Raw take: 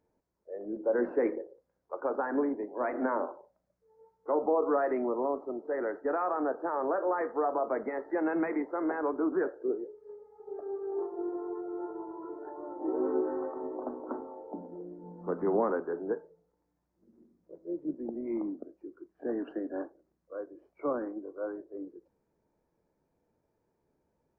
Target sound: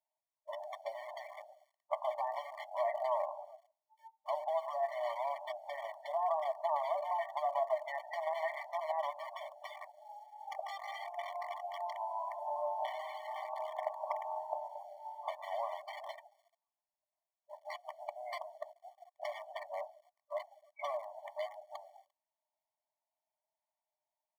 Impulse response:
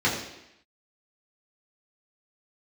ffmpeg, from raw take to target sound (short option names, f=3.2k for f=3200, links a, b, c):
-filter_complex "[0:a]asplit=2[a][b];[b]asoftclip=type=tanh:threshold=-28dB,volume=-5.5dB[c];[a][c]amix=inputs=2:normalize=0,lowshelf=f=300:t=q:w=3:g=-13.5,bandreject=f=60:t=h:w=6,bandreject=f=120:t=h:w=6,bandreject=f=180:t=h:w=6,bandreject=f=240:t=h:w=6,bandreject=f=300:t=h:w=6,bandreject=f=360:t=h:w=6,bandreject=f=420:t=h:w=6,bandreject=f=480:t=h:w=6,bandreject=f=540:t=h:w=6,asplit=5[d][e][f][g][h];[e]adelay=137,afreqshift=-110,volume=-19.5dB[i];[f]adelay=274,afreqshift=-220,volume=-24.9dB[j];[g]adelay=411,afreqshift=-330,volume=-30.2dB[k];[h]adelay=548,afreqshift=-440,volume=-35.6dB[l];[d][i][j][k][l]amix=inputs=5:normalize=0,acrossover=split=110|480[m][n][o];[n]acrusher=bits=6:dc=4:mix=0:aa=0.000001[p];[m][p][o]amix=inputs=3:normalize=0,acompressor=threshold=-34dB:ratio=5,afftdn=nr=21:nf=-49,equalizer=f=890:t=o:w=1.5:g=-3.5,afftfilt=real='re*eq(mod(floor(b*sr/1024/590),2),1)':imag='im*eq(mod(floor(b*sr/1024/590),2),1)':win_size=1024:overlap=0.75,volume=9dB"